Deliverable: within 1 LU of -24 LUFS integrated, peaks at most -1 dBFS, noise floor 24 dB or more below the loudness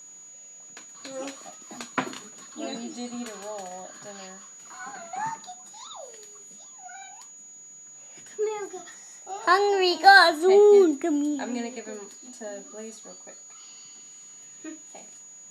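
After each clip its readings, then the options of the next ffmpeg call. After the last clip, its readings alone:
steady tone 6.8 kHz; tone level -44 dBFS; loudness -22.0 LUFS; peak level -2.0 dBFS; loudness target -24.0 LUFS
-> -af "bandreject=f=6800:w=30"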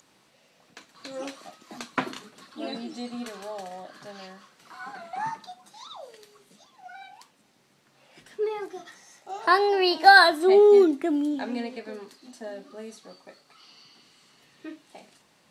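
steady tone not found; loudness -21.5 LUFS; peak level -2.0 dBFS; loudness target -24.0 LUFS
-> -af "volume=0.75"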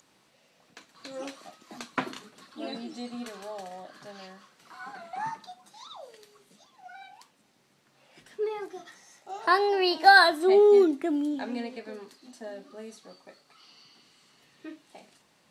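loudness -24.0 LUFS; peak level -4.5 dBFS; noise floor -66 dBFS

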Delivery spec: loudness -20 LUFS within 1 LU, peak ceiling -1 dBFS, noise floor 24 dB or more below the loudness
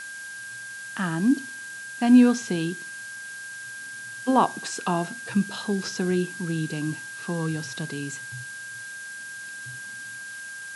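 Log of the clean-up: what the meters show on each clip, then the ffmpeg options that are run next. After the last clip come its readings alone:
steady tone 1.6 kHz; tone level -36 dBFS; noise floor -38 dBFS; noise floor target -51 dBFS; loudness -27.0 LUFS; peak level -7.0 dBFS; loudness target -20.0 LUFS
-> -af "bandreject=f=1600:w=30"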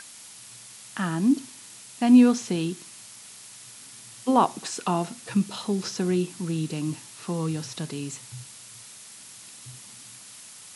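steady tone not found; noise floor -46 dBFS; noise floor target -50 dBFS
-> -af "afftdn=nr=6:nf=-46"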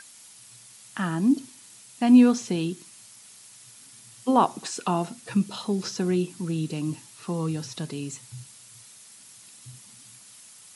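noise floor -50 dBFS; loudness -25.5 LUFS; peak level -7.0 dBFS; loudness target -20.0 LUFS
-> -af "volume=1.88"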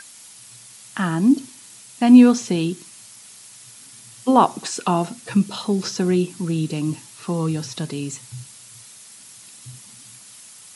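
loudness -20.0 LUFS; peak level -1.5 dBFS; noise floor -45 dBFS

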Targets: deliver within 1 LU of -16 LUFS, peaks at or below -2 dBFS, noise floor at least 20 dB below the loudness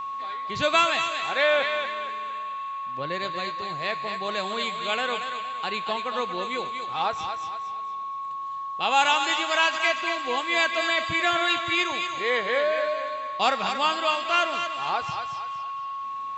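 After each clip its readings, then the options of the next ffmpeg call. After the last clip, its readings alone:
steady tone 1.1 kHz; tone level -30 dBFS; loudness -25.5 LUFS; peak level -8.5 dBFS; loudness target -16.0 LUFS
-> -af "bandreject=f=1100:w=30"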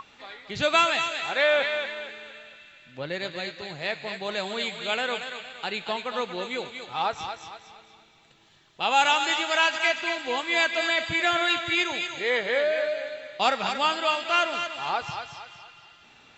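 steady tone not found; loudness -25.5 LUFS; peak level -9.0 dBFS; loudness target -16.0 LUFS
-> -af "volume=2.99,alimiter=limit=0.794:level=0:latency=1"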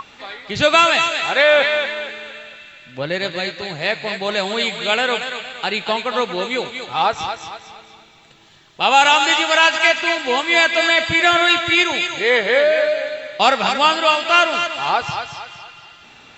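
loudness -16.5 LUFS; peak level -2.0 dBFS; noise floor -46 dBFS

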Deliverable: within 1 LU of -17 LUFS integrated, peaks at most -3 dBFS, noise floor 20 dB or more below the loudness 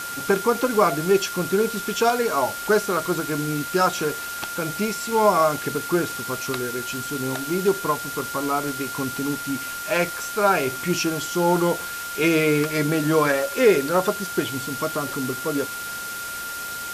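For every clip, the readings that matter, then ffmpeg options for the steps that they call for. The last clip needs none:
steady tone 1.4 kHz; tone level -31 dBFS; noise floor -32 dBFS; noise floor target -43 dBFS; loudness -23.0 LUFS; peak level -5.5 dBFS; loudness target -17.0 LUFS
-> -af "bandreject=f=1400:w=30"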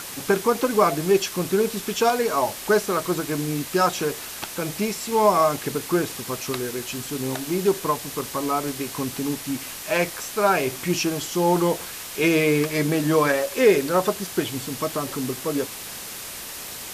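steady tone not found; noise floor -36 dBFS; noise floor target -44 dBFS
-> -af "afftdn=nr=8:nf=-36"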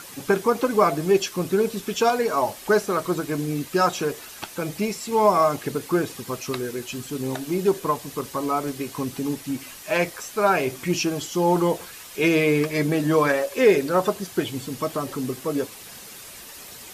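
noise floor -42 dBFS; noise floor target -44 dBFS
-> -af "afftdn=nr=6:nf=-42"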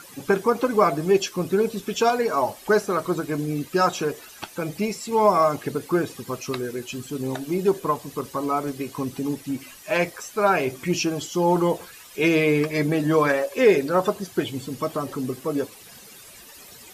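noise floor -46 dBFS; loudness -23.5 LUFS; peak level -6.0 dBFS; loudness target -17.0 LUFS
-> -af "volume=2.11,alimiter=limit=0.708:level=0:latency=1"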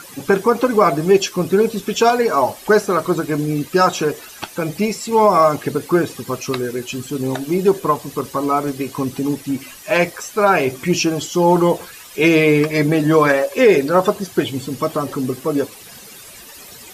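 loudness -17.5 LUFS; peak level -3.0 dBFS; noise floor -39 dBFS

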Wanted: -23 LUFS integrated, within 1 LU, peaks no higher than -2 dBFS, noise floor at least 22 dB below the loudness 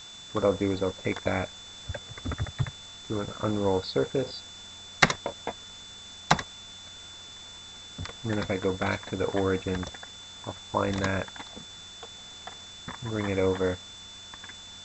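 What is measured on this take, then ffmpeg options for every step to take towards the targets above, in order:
steady tone 3.5 kHz; tone level -44 dBFS; noise floor -45 dBFS; noise floor target -52 dBFS; loudness -30.0 LUFS; peak level -4.5 dBFS; loudness target -23.0 LUFS
-> -af "bandreject=f=3500:w=30"
-af "afftdn=nr=7:nf=-45"
-af "volume=2.24,alimiter=limit=0.794:level=0:latency=1"

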